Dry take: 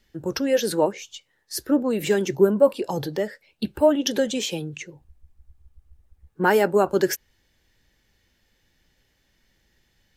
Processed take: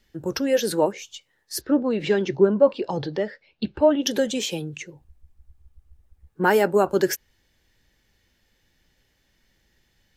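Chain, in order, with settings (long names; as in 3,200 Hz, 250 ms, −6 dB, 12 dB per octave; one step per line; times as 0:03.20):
0:01.61–0:04.03: low-pass filter 4,900 Hz 24 dB per octave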